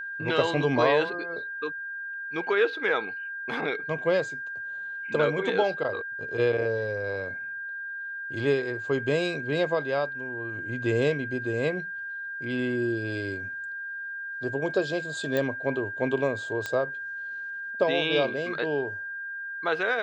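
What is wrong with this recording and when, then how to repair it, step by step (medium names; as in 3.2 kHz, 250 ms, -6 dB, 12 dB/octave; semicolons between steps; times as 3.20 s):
whine 1.6 kHz -33 dBFS
15.37 s: pop -15 dBFS
16.66 s: pop -17 dBFS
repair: de-click; band-stop 1.6 kHz, Q 30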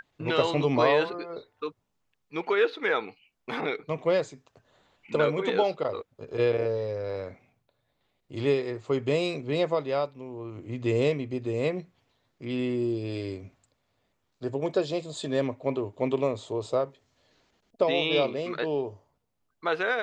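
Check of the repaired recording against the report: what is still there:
nothing left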